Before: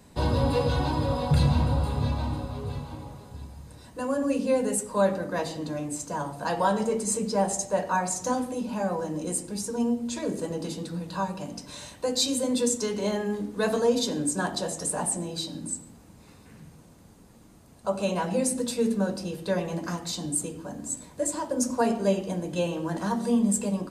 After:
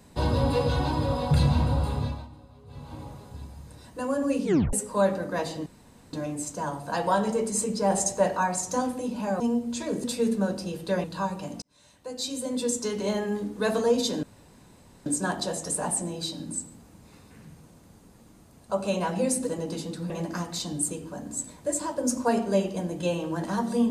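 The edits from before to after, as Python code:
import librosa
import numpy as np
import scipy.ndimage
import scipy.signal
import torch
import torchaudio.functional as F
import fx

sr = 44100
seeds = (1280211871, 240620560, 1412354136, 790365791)

y = fx.edit(x, sr, fx.fade_down_up(start_s=1.94, length_s=1.07, db=-17.0, fade_s=0.34),
    fx.tape_stop(start_s=4.44, length_s=0.29),
    fx.insert_room_tone(at_s=5.66, length_s=0.47),
    fx.clip_gain(start_s=7.43, length_s=0.47, db=3.0),
    fx.cut(start_s=8.93, length_s=0.83),
    fx.swap(start_s=10.4, length_s=0.62, other_s=18.63, other_length_s=1.0),
    fx.fade_in_span(start_s=11.6, length_s=1.42),
    fx.insert_room_tone(at_s=14.21, length_s=0.83), tone=tone)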